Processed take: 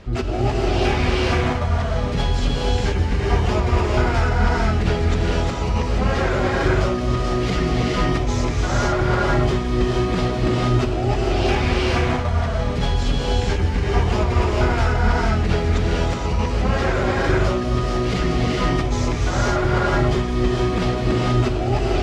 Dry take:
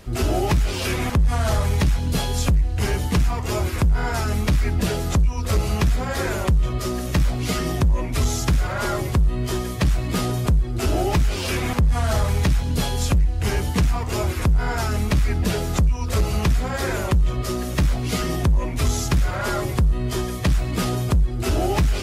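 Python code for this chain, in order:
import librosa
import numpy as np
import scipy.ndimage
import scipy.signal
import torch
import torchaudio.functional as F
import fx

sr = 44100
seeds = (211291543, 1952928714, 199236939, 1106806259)

y = fx.over_compress(x, sr, threshold_db=-22.0, ratio=-0.5)
y = fx.air_absorb(y, sr, metres=140.0)
y = fx.rev_gated(y, sr, seeds[0], gate_ms=500, shape='rising', drr_db=-3.0)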